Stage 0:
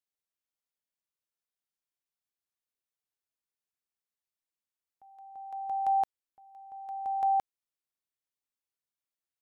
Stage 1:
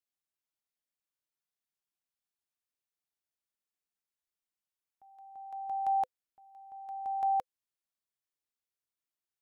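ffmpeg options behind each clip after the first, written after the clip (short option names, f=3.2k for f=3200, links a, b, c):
-af "bandreject=f=510:w=12,volume=-2.5dB"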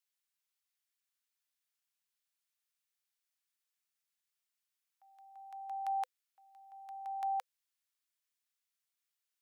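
-af "highpass=1.4k,volume=4.5dB"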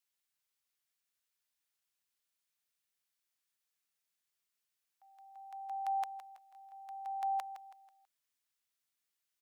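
-af "aecho=1:1:163|326|489|652:0.251|0.098|0.0382|0.0149,volume=1dB"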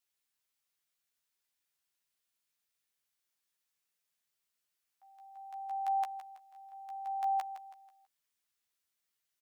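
-filter_complex "[0:a]asplit=2[a][b];[b]adelay=13,volume=-5dB[c];[a][c]amix=inputs=2:normalize=0"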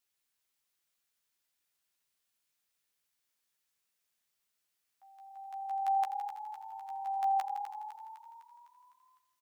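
-filter_complex "[0:a]asplit=8[a][b][c][d][e][f][g][h];[b]adelay=253,afreqshift=35,volume=-10dB[i];[c]adelay=506,afreqshift=70,volume=-14.9dB[j];[d]adelay=759,afreqshift=105,volume=-19.8dB[k];[e]adelay=1012,afreqshift=140,volume=-24.6dB[l];[f]adelay=1265,afreqshift=175,volume=-29.5dB[m];[g]adelay=1518,afreqshift=210,volume=-34.4dB[n];[h]adelay=1771,afreqshift=245,volume=-39.3dB[o];[a][i][j][k][l][m][n][o]amix=inputs=8:normalize=0,volume=2dB"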